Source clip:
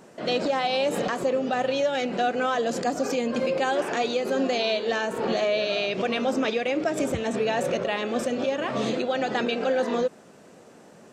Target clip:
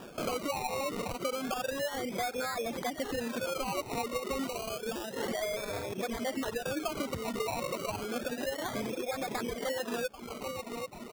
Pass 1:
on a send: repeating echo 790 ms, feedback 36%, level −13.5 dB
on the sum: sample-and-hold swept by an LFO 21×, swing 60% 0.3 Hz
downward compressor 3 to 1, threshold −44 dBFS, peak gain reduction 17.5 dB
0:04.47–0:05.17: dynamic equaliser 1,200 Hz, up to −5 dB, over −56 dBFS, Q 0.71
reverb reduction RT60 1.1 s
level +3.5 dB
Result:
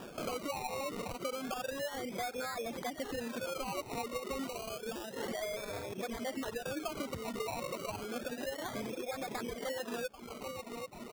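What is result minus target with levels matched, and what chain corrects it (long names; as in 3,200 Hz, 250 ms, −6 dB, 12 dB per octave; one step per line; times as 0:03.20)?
downward compressor: peak gain reduction +4.5 dB
on a send: repeating echo 790 ms, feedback 36%, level −13.5 dB
on the sum: sample-and-hold swept by an LFO 21×, swing 60% 0.3 Hz
downward compressor 3 to 1, threshold −37.5 dBFS, peak gain reduction 13 dB
0:04.47–0:05.17: dynamic equaliser 1,200 Hz, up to −5 dB, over −56 dBFS, Q 0.71
reverb reduction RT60 1.1 s
level +3.5 dB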